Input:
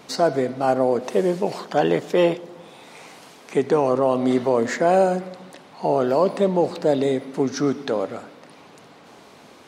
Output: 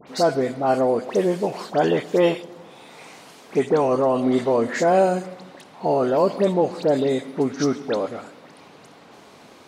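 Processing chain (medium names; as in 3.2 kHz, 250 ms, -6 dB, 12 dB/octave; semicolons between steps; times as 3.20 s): phase dispersion highs, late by 77 ms, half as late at 2.2 kHz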